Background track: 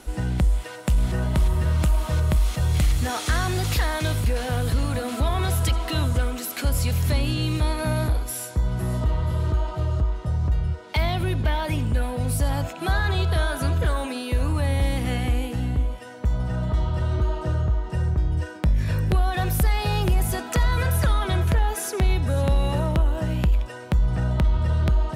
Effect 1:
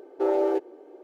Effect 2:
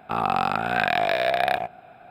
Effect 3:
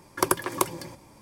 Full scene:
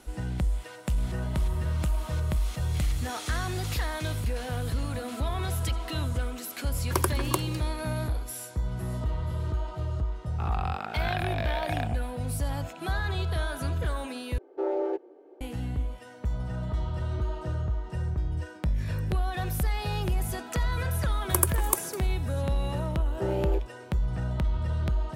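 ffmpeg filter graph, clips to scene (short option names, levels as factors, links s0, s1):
-filter_complex "[3:a]asplit=2[s0][s1];[1:a]asplit=2[s2][s3];[0:a]volume=0.447[s4];[s2]aemphasis=mode=reproduction:type=50kf[s5];[s1]aexciter=amount=5.3:drive=2.5:freq=7100[s6];[s4]asplit=2[s7][s8];[s7]atrim=end=14.384[s9];[s5]atrim=end=1.03,asetpts=PTS-STARTPTS,volume=0.562[s10];[s8]atrim=start=15.406[s11];[s0]atrim=end=1.21,asetpts=PTS-STARTPTS,volume=0.631,afade=t=in:d=0.004:c=hsin,afade=t=out:st=1.206:d=0.004:c=hsin,adelay=6730[s12];[2:a]atrim=end=2.1,asetpts=PTS-STARTPTS,volume=0.282,afade=t=in:d=0.004:c=hsin,afade=t=out:st=2.096:d=0.004:c=hsin,adelay=10290[s13];[s6]atrim=end=1.21,asetpts=PTS-STARTPTS,volume=0.422,afade=t=in:d=0.004:c=hsin,afade=t=out:st=1.206:d=0.004:c=hsin,adelay=21120[s14];[s3]atrim=end=1.03,asetpts=PTS-STARTPTS,volume=0.447,afade=t=in:d=0.004:c=hsin,afade=t=out:st=1.026:d=0.004:c=hsin,adelay=23000[s15];[s9][s10]acrossfade=d=0.004:c1=hsin:c2=hsin[s16];[s16][s11]acrossfade=d=0.004:c1=hsin:c2=hsin[s17];[s17][s12][s13][s14][s15]amix=inputs=5:normalize=0"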